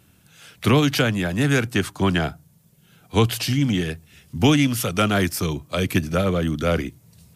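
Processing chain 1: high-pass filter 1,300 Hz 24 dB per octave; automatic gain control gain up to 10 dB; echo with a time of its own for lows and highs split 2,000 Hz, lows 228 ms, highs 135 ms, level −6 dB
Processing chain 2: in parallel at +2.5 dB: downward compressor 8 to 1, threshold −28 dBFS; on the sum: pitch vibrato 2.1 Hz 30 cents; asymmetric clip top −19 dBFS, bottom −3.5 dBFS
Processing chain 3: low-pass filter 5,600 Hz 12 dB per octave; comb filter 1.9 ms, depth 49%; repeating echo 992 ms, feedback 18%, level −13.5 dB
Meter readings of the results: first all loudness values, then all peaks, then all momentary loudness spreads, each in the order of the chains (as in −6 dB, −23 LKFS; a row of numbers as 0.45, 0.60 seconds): −19.5, −20.5, −21.5 LKFS; −1.5, −3.5, −4.5 dBFS; 12, 9, 14 LU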